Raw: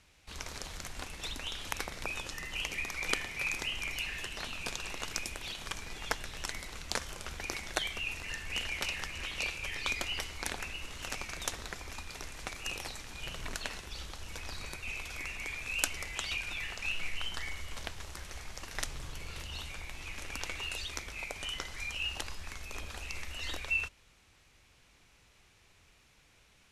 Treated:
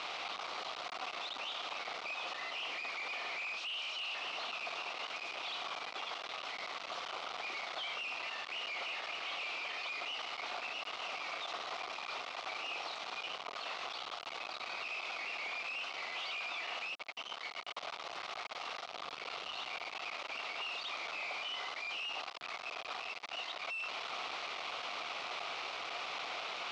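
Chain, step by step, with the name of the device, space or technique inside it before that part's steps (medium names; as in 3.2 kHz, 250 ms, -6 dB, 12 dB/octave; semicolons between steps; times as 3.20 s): 3.56–4.15 s: elliptic high-pass 2.8 kHz, stop band 40 dB; home computer beeper (one-bit comparator; cabinet simulation 540–4300 Hz, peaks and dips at 710 Hz +8 dB, 1.2 kHz +7 dB, 1.7 kHz -8 dB); trim +1 dB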